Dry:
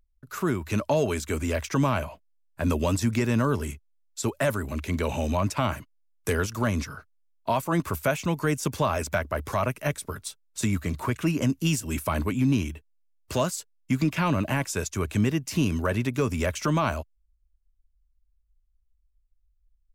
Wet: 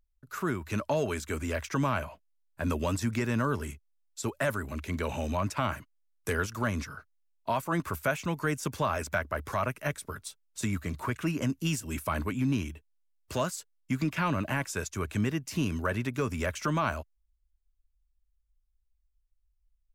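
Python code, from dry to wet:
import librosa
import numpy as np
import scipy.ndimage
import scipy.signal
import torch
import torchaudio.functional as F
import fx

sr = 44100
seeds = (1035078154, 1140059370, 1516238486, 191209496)

y = fx.dynamic_eq(x, sr, hz=1500.0, q=1.4, threshold_db=-43.0, ratio=4.0, max_db=5)
y = y * 10.0 ** (-5.5 / 20.0)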